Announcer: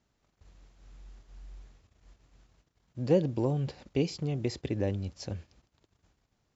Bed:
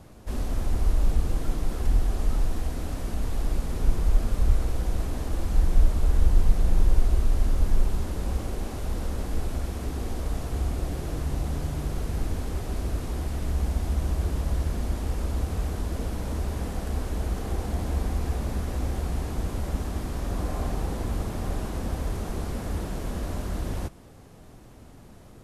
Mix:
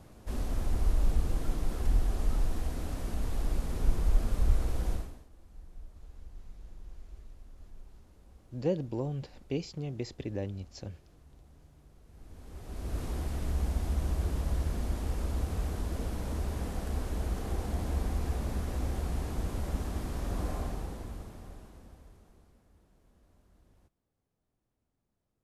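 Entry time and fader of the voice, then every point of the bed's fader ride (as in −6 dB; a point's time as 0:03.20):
5.55 s, −5.0 dB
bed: 0:04.93 −4.5 dB
0:05.29 −28.5 dB
0:12.03 −28.5 dB
0:13.00 −4.5 dB
0:20.50 −4.5 dB
0:22.69 −34 dB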